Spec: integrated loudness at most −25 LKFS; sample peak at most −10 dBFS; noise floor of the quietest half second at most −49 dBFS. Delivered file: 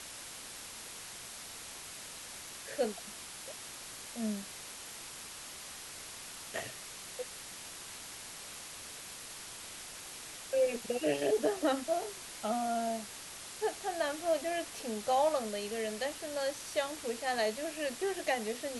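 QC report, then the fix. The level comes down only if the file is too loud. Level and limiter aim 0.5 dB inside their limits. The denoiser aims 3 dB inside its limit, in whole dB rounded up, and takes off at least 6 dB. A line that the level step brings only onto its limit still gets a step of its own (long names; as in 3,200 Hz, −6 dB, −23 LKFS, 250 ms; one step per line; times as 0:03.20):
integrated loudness −37.0 LKFS: in spec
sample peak −17.0 dBFS: in spec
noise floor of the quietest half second −47 dBFS: out of spec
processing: broadband denoise 6 dB, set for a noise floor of −47 dBFS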